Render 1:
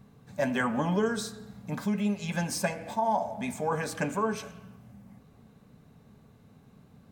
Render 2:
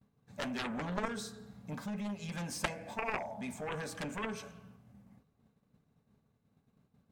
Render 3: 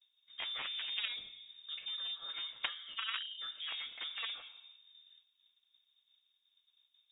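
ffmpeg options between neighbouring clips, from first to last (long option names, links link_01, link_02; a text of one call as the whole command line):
ffmpeg -i in.wav -af "aeval=exprs='0.188*(cos(1*acos(clip(val(0)/0.188,-1,1)))-cos(1*PI/2))+0.0944*(cos(3*acos(clip(val(0)/0.188,-1,1)))-cos(3*PI/2))':channel_layout=same,agate=range=-33dB:threshold=-53dB:ratio=3:detection=peak,highshelf=frequency=12000:gain=-4.5" out.wav
ffmpeg -i in.wav -af "lowpass=frequency=3200:width_type=q:width=0.5098,lowpass=frequency=3200:width_type=q:width=0.6013,lowpass=frequency=3200:width_type=q:width=0.9,lowpass=frequency=3200:width_type=q:width=2.563,afreqshift=-3800,volume=-3dB" out.wav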